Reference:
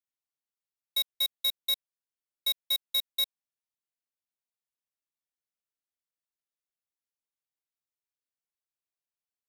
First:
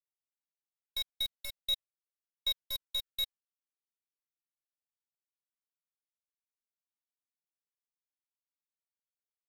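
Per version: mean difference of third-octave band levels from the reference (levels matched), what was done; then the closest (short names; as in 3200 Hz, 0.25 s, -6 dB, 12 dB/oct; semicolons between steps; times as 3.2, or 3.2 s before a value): 3.5 dB: block floating point 3-bit; gate with hold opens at -32 dBFS; high shelf 9200 Hz -7 dB; cascading flanger falling 0.23 Hz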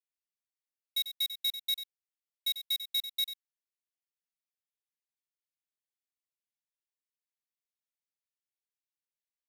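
4.5 dB: steep high-pass 1700 Hz 72 dB/oct; high shelf 5500 Hz -3.5 dB; in parallel at -9 dB: bit-crush 7-bit; on the sum: echo 94 ms -11 dB; gain -4.5 dB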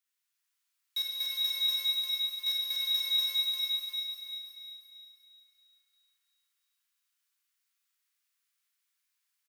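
6.5 dB: HPF 1200 Hz 24 dB/oct; soft clip -36 dBFS, distortion -6 dB; on a send: feedback echo 0.351 s, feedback 35%, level -4 dB; on the sum: Schroeder reverb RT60 2.9 s, combs from 33 ms, DRR -3 dB; gain +7.5 dB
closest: first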